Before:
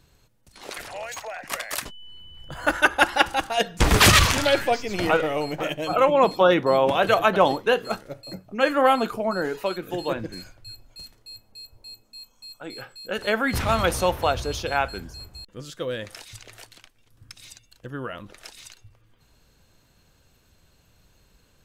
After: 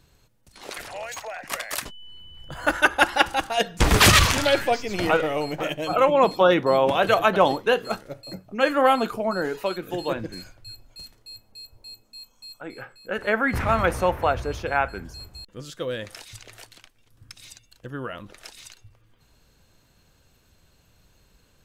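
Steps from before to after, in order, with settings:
0:12.61–0:15.05: high shelf with overshoot 2,700 Hz −8 dB, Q 1.5

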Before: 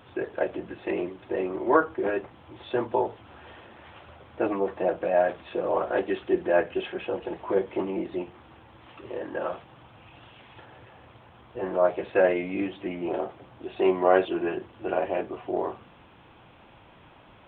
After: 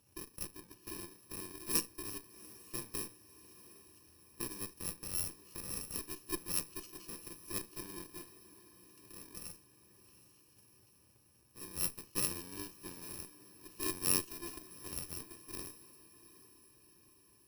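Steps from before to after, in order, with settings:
samples in bit-reversed order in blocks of 64 samples
feedback delay with all-pass diffusion 746 ms, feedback 56%, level −14.5 dB
harmonic generator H 2 −12 dB, 3 −13 dB, 8 −21 dB, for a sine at −6.5 dBFS
level −7.5 dB

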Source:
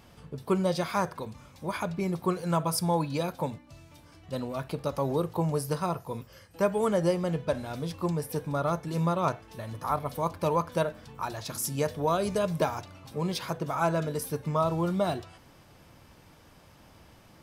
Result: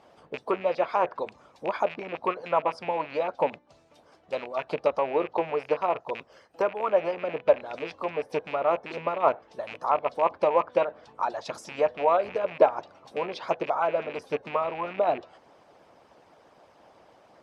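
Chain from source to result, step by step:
loose part that buzzes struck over −35 dBFS, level −25 dBFS
treble cut that deepens with the level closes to 2,700 Hz, closed at −25 dBFS
high-pass filter 320 Hz 6 dB per octave
parametric band 620 Hz +12.5 dB 1.6 octaves
harmonic and percussive parts rebalanced harmonic −14 dB
high-frequency loss of the air 59 metres

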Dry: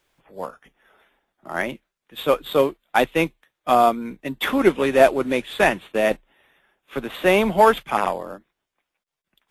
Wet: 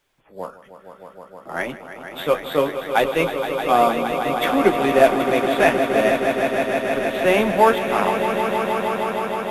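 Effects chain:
flanger 0.6 Hz, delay 6.8 ms, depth 8 ms, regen −36%
echo that builds up and dies away 156 ms, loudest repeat 5, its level −10 dB
level +3 dB

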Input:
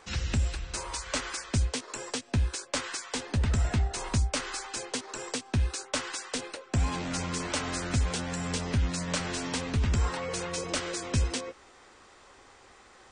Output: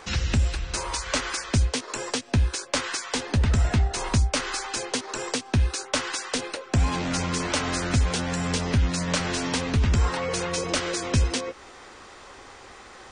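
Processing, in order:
parametric band 7,900 Hz −4.5 dB 0.24 octaves
in parallel at −1 dB: downward compressor, threshold −41 dBFS, peak gain reduction 17 dB
on the sum: level +4 dB

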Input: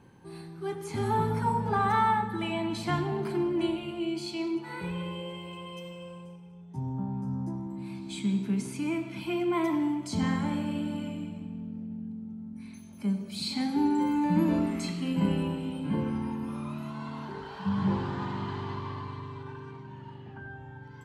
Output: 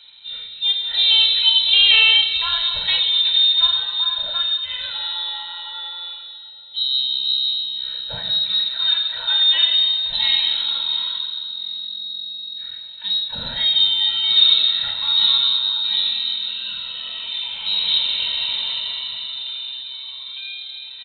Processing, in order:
in parallel at −12 dB: decimation without filtering 11×
on the sum: repeating echo 690 ms, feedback 27%, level −21.5 dB
convolution reverb RT60 0.60 s, pre-delay 3 ms, DRR 7.5 dB
voice inversion scrambler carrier 4,000 Hz
level +6.5 dB

